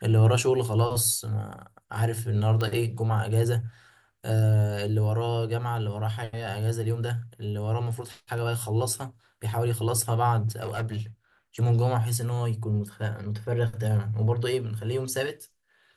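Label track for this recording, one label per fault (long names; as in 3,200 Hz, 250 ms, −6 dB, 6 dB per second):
2.610000	2.610000	click −17 dBFS
10.470000	11.010000	clipping −26 dBFS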